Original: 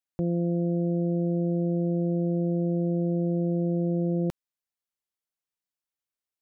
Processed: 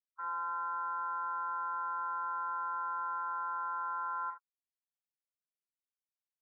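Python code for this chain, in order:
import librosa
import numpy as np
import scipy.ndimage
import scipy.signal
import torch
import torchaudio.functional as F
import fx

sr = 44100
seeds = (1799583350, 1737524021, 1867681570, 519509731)

p1 = fx.spec_topn(x, sr, count=4)
p2 = fx.hum_notches(p1, sr, base_hz=60, count=3, at=(3.17, 4.16), fade=0.02)
p3 = 10.0 ** (-25.0 / 20.0) * np.tanh(p2 / 10.0 ** (-25.0 / 20.0))
p4 = p3 * np.sin(2.0 * np.pi * 1200.0 * np.arange(len(p3)) / sr)
p5 = p4 + fx.room_early_taps(p4, sr, ms=(11, 41, 75), db=(-14.0, -5.0, -10.5), dry=0)
y = p5 * 10.0 ** (-8.0 / 20.0)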